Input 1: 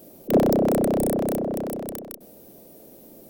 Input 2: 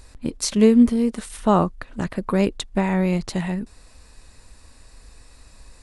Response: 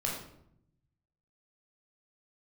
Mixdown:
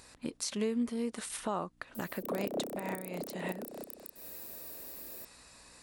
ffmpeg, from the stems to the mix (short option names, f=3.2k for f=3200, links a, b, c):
-filter_complex "[0:a]highshelf=f=6.8k:g=10,adelay=1950,volume=-3.5dB[a];[1:a]acompressor=threshold=-28dB:ratio=2,aeval=exprs='val(0)+0.002*(sin(2*PI*60*n/s)+sin(2*PI*2*60*n/s)/2+sin(2*PI*3*60*n/s)/3+sin(2*PI*4*60*n/s)/4+sin(2*PI*5*60*n/s)/5)':c=same,volume=-1.5dB,asplit=2[b][c];[c]apad=whole_len=231417[d];[a][d]sidechaincompress=threshold=-30dB:ratio=8:attack=11:release=223[e];[e][b]amix=inputs=2:normalize=0,highpass=f=490:p=1,alimiter=limit=-23dB:level=0:latency=1:release=177"